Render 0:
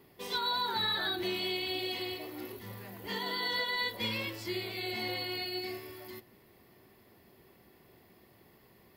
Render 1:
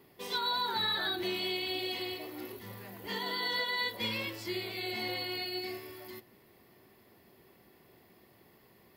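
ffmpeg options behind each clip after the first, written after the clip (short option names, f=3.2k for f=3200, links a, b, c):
-af "lowshelf=f=86:g=-6"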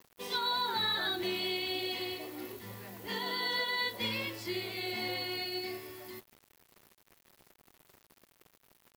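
-af "acrusher=bits=8:mix=0:aa=0.000001"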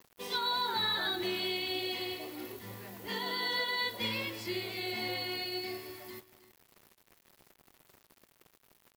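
-af "aecho=1:1:316:0.15"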